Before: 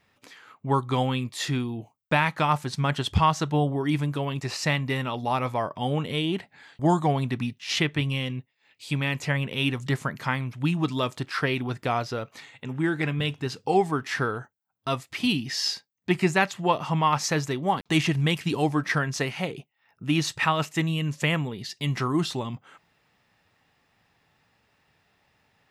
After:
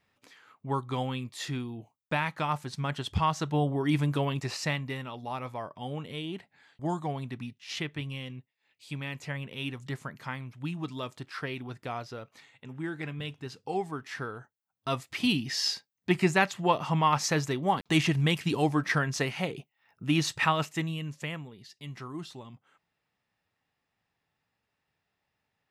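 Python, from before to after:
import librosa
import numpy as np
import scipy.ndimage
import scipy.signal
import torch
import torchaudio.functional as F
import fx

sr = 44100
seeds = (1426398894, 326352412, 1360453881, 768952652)

y = fx.gain(x, sr, db=fx.line((3.09, -7.0), (4.19, 0.5), (5.07, -10.0), (14.33, -10.0), (15.02, -2.0), (20.5, -2.0), (21.51, -14.5)))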